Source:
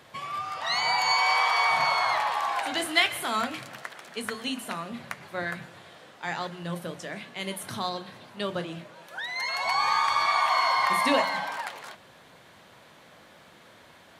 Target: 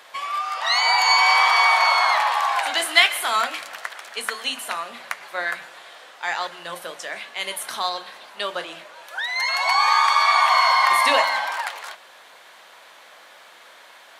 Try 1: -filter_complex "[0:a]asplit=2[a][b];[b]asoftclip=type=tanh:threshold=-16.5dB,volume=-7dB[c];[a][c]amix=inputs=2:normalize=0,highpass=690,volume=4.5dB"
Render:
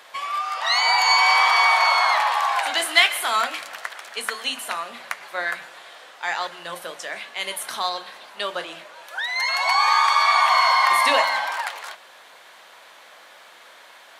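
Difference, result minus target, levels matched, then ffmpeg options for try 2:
soft clip: distortion +19 dB
-filter_complex "[0:a]asplit=2[a][b];[b]asoftclip=type=tanh:threshold=-4.5dB,volume=-7dB[c];[a][c]amix=inputs=2:normalize=0,highpass=690,volume=4.5dB"

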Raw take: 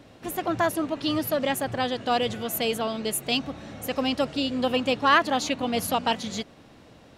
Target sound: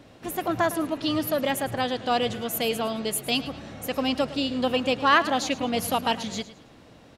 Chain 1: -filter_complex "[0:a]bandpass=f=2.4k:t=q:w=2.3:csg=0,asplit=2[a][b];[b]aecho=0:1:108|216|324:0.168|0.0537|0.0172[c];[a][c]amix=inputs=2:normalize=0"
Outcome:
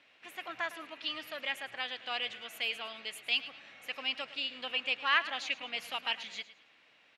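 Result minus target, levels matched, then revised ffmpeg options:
2000 Hz band +5.0 dB
-filter_complex "[0:a]asplit=2[a][b];[b]aecho=0:1:108|216|324:0.168|0.0537|0.0172[c];[a][c]amix=inputs=2:normalize=0"

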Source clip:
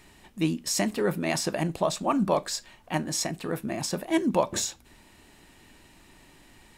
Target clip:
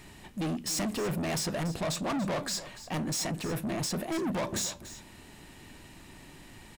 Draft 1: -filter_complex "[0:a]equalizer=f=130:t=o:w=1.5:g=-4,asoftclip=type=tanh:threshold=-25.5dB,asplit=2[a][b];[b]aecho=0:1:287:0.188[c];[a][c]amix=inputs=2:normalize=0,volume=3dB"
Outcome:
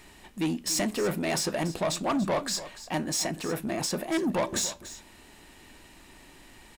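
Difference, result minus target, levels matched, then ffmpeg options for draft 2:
125 Hz band -4.5 dB; soft clip: distortion -5 dB
-filter_complex "[0:a]equalizer=f=130:t=o:w=1.5:g=5,asoftclip=type=tanh:threshold=-32dB,asplit=2[a][b];[b]aecho=0:1:287:0.188[c];[a][c]amix=inputs=2:normalize=0,volume=3dB"

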